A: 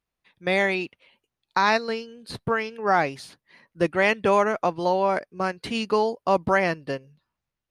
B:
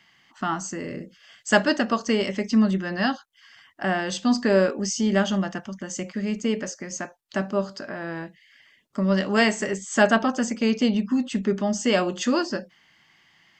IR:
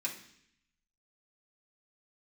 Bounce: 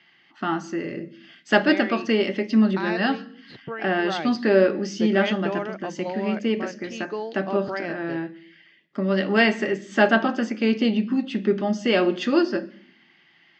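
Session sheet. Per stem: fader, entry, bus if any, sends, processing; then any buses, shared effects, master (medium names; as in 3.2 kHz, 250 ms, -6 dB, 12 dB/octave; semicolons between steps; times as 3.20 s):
-9.0 dB, 1.20 s, no send, none
0.0 dB, 0.00 s, send -8.5 dB, hum notches 50/100/150/200 Hz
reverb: on, RT60 0.65 s, pre-delay 3 ms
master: cabinet simulation 140–4300 Hz, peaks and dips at 150 Hz +4 dB, 330 Hz +6 dB, 1 kHz -5 dB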